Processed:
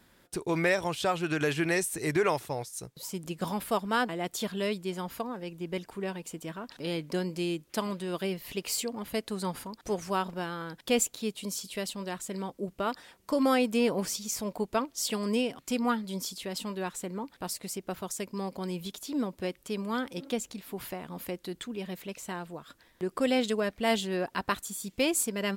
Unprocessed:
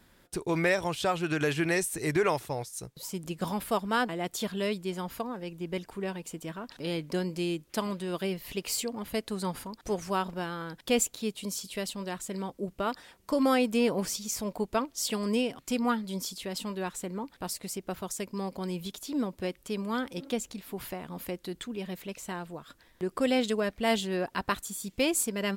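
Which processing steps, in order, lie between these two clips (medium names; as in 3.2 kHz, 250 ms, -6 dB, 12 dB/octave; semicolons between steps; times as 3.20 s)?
bass shelf 66 Hz -7 dB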